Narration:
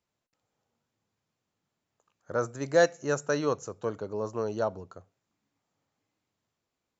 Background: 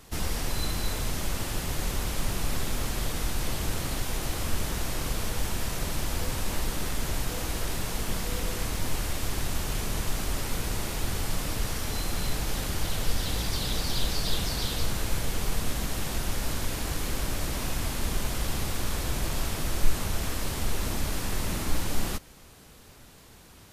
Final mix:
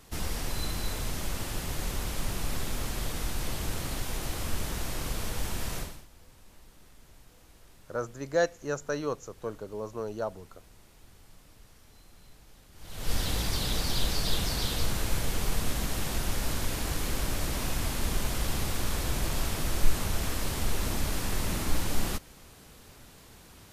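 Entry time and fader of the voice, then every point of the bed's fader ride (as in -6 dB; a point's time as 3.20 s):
5.60 s, -4.0 dB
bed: 5.79 s -3 dB
6.08 s -25.5 dB
12.71 s -25.5 dB
13.13 s -0.5 dB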